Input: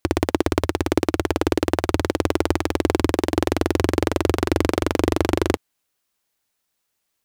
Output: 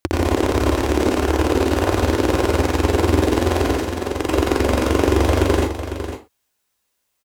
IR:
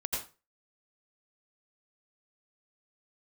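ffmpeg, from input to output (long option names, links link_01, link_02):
-filter_complex "[0:a]asettb=1/sr,asplit=3[link_01][link_02][link_03];[link_01]atrim=end=3.674[link_04];[link_02]atrim=start=3.67:end=4.19,asetpts=PTS-STARTPTS,afade=type=in:duration=0.004:curve=qsin,afade=type=out:start_time=0.516:duration=0.004:curve=qsin,acompressor=threshold=-23dB:ratio=6[link_05];[link_03]atrim=start=4.186[link_06];[link_04][link_05]acrossfade=duration=0.004:curve1=hsin:curve2=qsin[link_07];[link_07][link_06]acrossfade=duration=0.004:curve1=qsin:curve2=hsin,aecho=1:1:501:0.316[link_08];[1:a]atrim=start_sample=2205,afade=type=out:start_time=0.28:duration=0.01,atrim=end_sample=12789[link_09];[link_08][link_09]afir=irnorm=-1:irlink=0,volume=-1dB"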